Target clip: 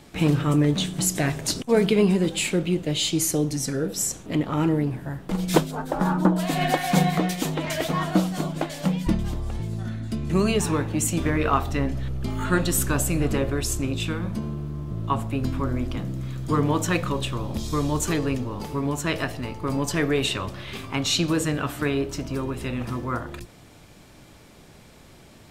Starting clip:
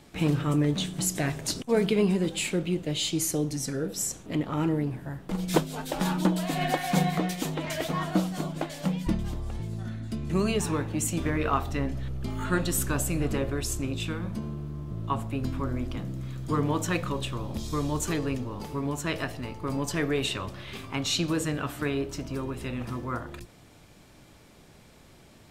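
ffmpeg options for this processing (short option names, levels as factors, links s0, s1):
-filter_complex "[0:a]asplit=3[s0][s1][s2];[s0]afade=t=out:st=5.7:d=0.02[s3];[s1]highshelf=f=1900:t=q:w=1.5:g=-11,afade=t=in:st=5.7:d=0.02,afade=t=out:st=6.38:d=0.02[s4];[s2]afade=t=in:st=6.38:d=0.02[s5];[s3][s4][s5]amix=inputs=3:normalize=0,volume=1.68"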